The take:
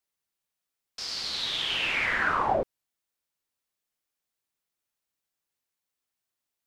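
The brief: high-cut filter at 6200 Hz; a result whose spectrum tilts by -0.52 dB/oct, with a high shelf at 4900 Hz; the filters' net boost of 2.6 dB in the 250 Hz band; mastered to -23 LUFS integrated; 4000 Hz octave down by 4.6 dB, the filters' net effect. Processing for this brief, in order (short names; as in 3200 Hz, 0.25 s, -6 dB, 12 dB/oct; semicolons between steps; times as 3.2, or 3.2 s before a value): LPF 6200 Hz; bell 250 Hz +3.5 dB; bell 4000 Hz -4 dB; high shelf 4900 Hz -3.5 dB; gain +5.5 dB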